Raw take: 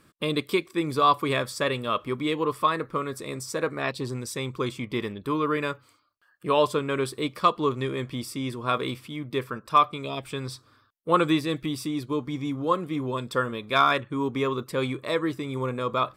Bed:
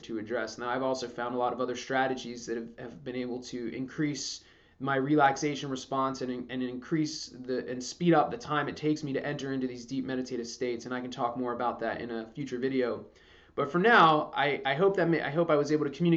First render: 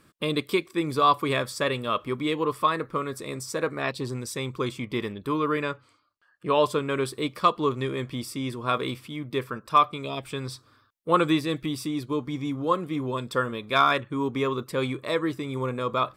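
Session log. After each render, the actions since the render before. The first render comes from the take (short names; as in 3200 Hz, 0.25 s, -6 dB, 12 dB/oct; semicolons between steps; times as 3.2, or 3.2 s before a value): 5.62–6.63 air absorption 57 m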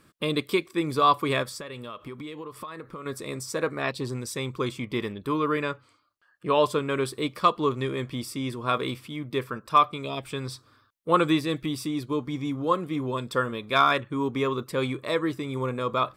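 1.43–3.06 compressor 12:1, threshold -34 dBFS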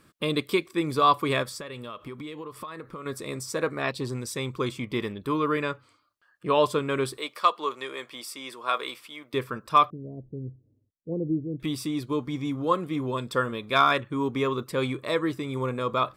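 7.17–9.34 HPF 600 Hz; 9.9–11.6 Gaussian blur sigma 21 samples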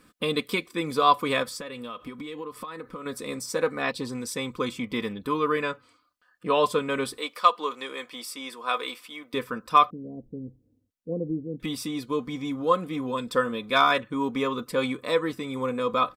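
comb 4 ms, depth 60%; dynamic EQ 300 Hz, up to -5 dB, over -37 dBFS, Q 4.3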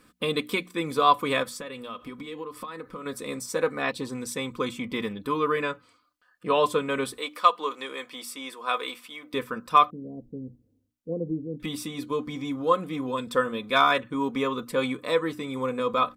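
dynamic EQ 4900 Hz, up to -6 dB, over -55 dBFS, Q 4.8; notches 60/120/180/240/300 Hz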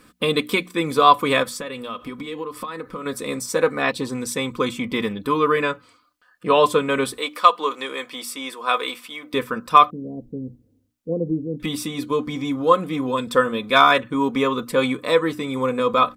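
gain +6.5 dB; limiter -1 dBFS, peak gain reduction 1.5 dB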